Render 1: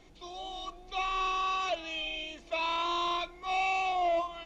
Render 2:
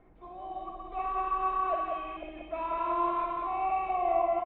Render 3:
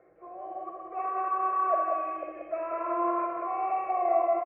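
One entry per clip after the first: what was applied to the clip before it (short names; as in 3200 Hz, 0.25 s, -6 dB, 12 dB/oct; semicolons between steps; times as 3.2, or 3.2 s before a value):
reverse delay 0.248 s, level -3.5 dB; LPF 1700 Hz 24 dB/oct; on a send: tapped delay 58/183 ms -7/-3.5 dB; on the sum: gain -1.5 dB
speaker cabinet 200–2700 Hz, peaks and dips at 320 Hz +7 dB, 530 Hz +8 dB, 1000 Hz +9 dB; fixed phaser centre 950 Hz, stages 6; feedback echo 81 ms, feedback 60%, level -11 dB; gain +2 dB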